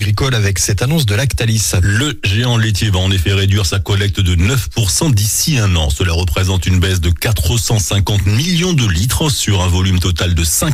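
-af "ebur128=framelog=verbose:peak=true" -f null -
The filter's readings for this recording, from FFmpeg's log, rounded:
Integrated loudness:
  I:         -13.6 LUFS
  Threshold: -23.6 LUFS
Loudness range:
  LRA:         0.5 LU
  Threshold: -33.7 LUFS
  LRA low:   -13.9 LUFS
  LRA high:  -13.4 LUFS
True peak:
  Peak:       -3.6 dBFS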